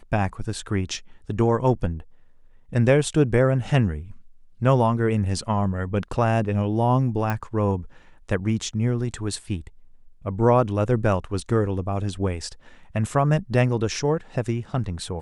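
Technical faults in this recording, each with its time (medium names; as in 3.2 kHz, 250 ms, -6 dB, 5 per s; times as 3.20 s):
7.30 s: pop -13 dBFS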